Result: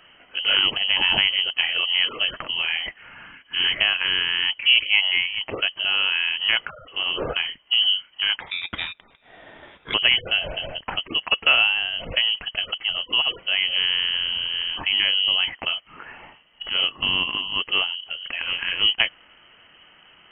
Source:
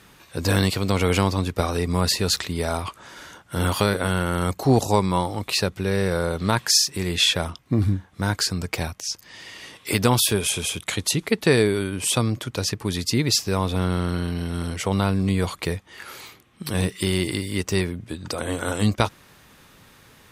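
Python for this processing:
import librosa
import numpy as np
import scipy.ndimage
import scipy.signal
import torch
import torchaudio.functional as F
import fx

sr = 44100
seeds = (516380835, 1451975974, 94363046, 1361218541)

y = fx.freq_invert(x, sr, carrier_hz=3100)
y = fx.ring_mod(y, sr, carrier_hz=600.0, at=(8.4, 9.94))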